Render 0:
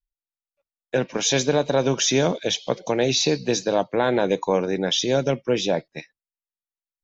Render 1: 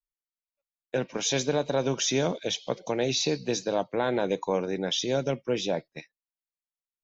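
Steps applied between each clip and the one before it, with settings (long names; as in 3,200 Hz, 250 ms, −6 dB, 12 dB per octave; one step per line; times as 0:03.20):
noise gate −40 dBFS, range −7 dB
notch filter 1,700 Hz, Q 26
level −6 dB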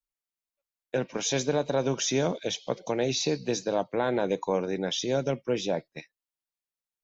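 dynamic equaliser 3,400 Hz, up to −3 dB, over −40 dBFS, Q 1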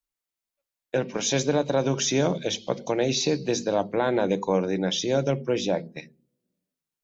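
on a send at −8.5 dB: resonant band-pass 220 Hz, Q 1.6 + convolution reverb RT60 0.45 s, pre-delay 3 ms
on the sum: level +3 dB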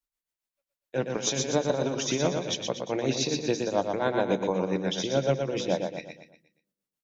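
shaped tremolo triangle 7.2 Hz, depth 80%
on a send: repeating echo 119 ms, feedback 43%, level −5 dB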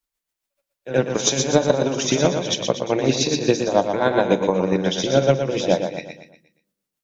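transient designer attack +6 dB, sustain +2 dB
echo ahead of the sound 75 ms −13 dB
level +5.5 dB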